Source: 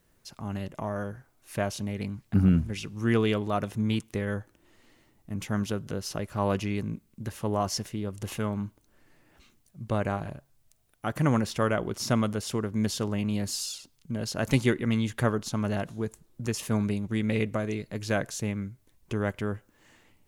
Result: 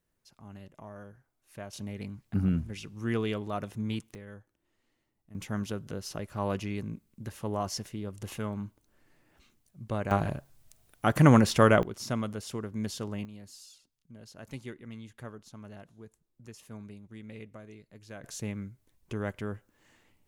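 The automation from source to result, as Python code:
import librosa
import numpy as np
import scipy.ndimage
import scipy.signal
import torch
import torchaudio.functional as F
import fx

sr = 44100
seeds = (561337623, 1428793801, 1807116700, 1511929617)

y = fx.gain(x, sr, db=fx.steps((0.0, -13.5), (1.73, -6.0), (4.15, -16.0), (5.35, -4.5), (10.11, 5.5), (11.83, -6.5), (13.25, -18.0), (18.24, -5.0)))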